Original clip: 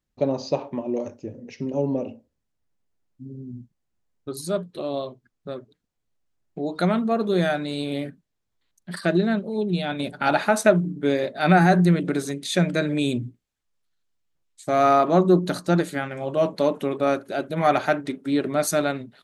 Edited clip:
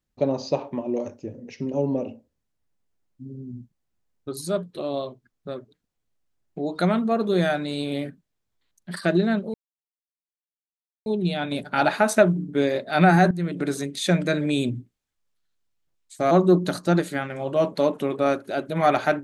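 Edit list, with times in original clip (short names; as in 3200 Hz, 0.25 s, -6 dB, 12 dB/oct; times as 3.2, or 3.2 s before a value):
9.54 insert silence 1.52 s
11.79–12.2 fade in, from -18 dB
14.79–15.12 cut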